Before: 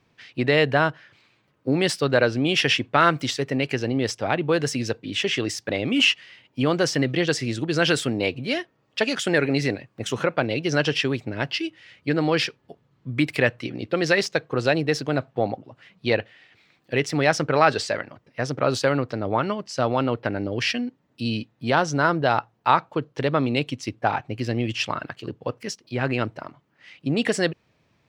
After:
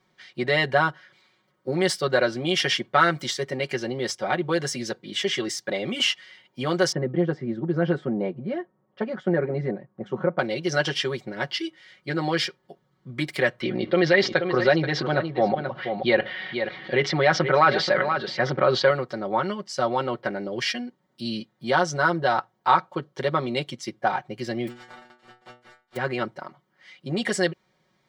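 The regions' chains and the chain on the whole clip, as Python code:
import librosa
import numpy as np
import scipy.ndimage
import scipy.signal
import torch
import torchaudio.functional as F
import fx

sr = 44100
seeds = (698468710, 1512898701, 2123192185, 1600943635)

y = fx.chain(x, sr, fx.lowpass(hz=1000.0, slope=12),
    fx.peak_eq(hz=190.0, db=6.0, octaves=0.82), at=(6.92, 10.39))
y = fx.chain(y, sr, fx.lowpass(hz=3900.0, slope=24),
    fx.echo_single(ms=480, db=-14.5),
    fx.env_flatten(amount_pct=50), at=(13.61, 18.91))
y = fx.spec_flatten(y, sr, power=0.13, at=(24.67, 25.95), fade=0.02)
y = fx.lowpass(y, sr, hz=2000.0, slope=12, at=(24.67, 25.95), fade=0.02)
y = fx.stiff_resonator(y, sr, f0_hz=120.0, decay_s=0.35, stiffness=0.002, at=(24.67, 25.95), fade=0.02)
y = fx.low_shelf(y, sr, hz=250.0, db=-7.0)
y = fx.notch(y, sr, hz=2600.0, q=5.5)
y = y + 0.88 * np.pad(y, (int(5.4 * sr / 1000.0), 0))[:len(y)]
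y = F.gain(torch.from_numpy(y), -2.5).numpy()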